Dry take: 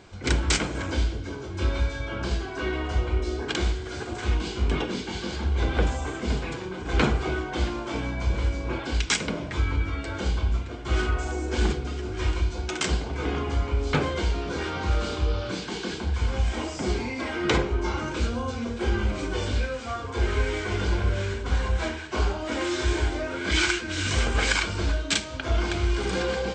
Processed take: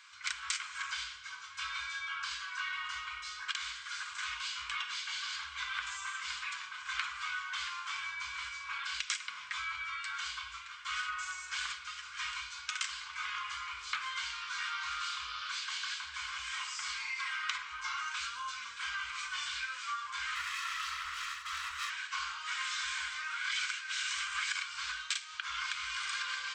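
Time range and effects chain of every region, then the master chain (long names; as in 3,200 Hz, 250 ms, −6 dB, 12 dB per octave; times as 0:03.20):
0:20.35–0:21.90: lower of the sound and its delayed copy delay 1.5 ms + frequency shifter −130 Hz
whole clip: elliptic high-pass filter 1,100 Hz, stop band 40 dB; downward compressor 6 to 1, threshold −33 dBFS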